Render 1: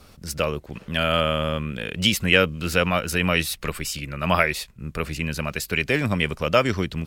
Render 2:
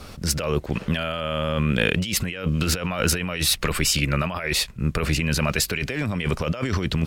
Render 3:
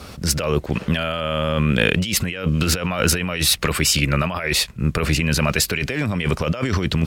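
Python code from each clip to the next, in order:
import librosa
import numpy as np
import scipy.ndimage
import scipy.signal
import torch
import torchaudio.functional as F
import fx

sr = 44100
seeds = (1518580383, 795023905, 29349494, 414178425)

y1 = fx.high_shelf(x, sr, hz=11000.0, db=-7.0)
y1 = fx.over_compress(y1, sr, threshold_db=-29.0, ratio=-1.0)
y1 = F.gain(torch.from_numpy(y1), 5.0).numpy()
y2 = scipy.signal.sosfilt(scipy.signal.butter(2, 46.0, 'highpass', fs=sr, output='sos'), y1)
y2 = F.gain(torch.from_numpy(y2), 3.5).numpy()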